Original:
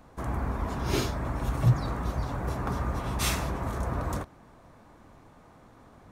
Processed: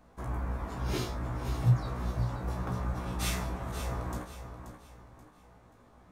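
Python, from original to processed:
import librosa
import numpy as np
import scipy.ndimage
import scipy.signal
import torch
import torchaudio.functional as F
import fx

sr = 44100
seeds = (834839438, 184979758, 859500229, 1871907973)

y = fx.comb_fb(x, sr, f0_hz=61.0, decay_s=0.2, harmonics='all', damping=0.0, mix_pct=100)
y = fx.echo_feedback(y, sr, ms=531, feedback_pct=35, wet_db=-10.0)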